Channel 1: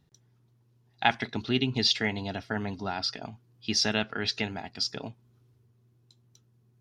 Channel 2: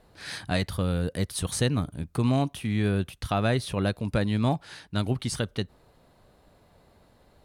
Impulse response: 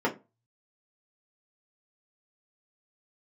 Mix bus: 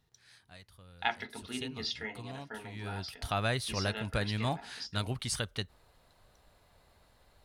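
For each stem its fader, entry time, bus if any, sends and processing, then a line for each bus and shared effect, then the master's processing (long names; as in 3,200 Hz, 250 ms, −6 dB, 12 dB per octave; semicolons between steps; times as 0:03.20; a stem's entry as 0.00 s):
−0.5 dB, 0.00 s, send −21 dB, automatic ducking −14 dB, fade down 2.00 s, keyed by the second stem
0:01.15 −22 dB → 0:01.76 −13 dB → 0:02.58 −13 dB → 0:03.36 −0.5 dB, 0.00 s, no send, no processing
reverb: on, RT60 0.25 s, pre-delay 3 ms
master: parametric band 250 Hz −11 dB 2.9 octaves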